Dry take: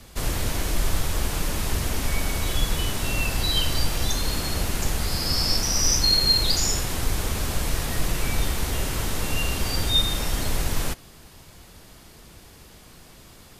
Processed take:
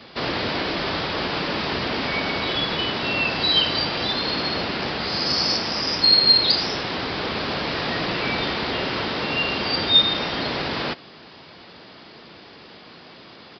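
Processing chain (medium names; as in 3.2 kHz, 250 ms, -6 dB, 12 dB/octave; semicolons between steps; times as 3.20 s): high-pass 220 Hz 12 dB/octave; in parallel at 0 dB: gain riding within 3 dB 2 s; on the sum: resampled via 11.025 kHz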